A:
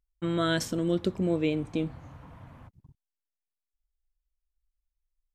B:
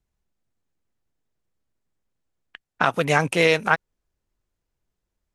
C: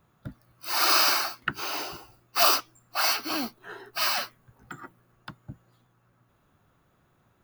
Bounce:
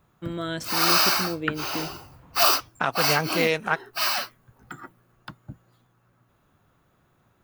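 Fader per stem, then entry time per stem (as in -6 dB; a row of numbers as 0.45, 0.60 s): -4.0, -5.0, +1.5 dB; 0.00, 0.00, 0.00 s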